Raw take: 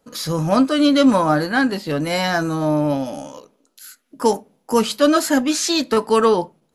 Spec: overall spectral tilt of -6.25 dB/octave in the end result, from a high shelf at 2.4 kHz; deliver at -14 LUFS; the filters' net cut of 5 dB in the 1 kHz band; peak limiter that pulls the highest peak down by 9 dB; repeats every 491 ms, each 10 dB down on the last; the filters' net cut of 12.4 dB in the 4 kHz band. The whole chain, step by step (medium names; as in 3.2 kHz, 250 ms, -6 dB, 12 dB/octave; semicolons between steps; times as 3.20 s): peaking EQ 1 kHz -4.5 dB; treble shelf 2.4 kHz -7.5 dB; peaking EQ 4 kHz -9 dB; peak limiter -13.5 dBFS; feedback delay 491 ms, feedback 32%, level -10 dB; trim +9 dB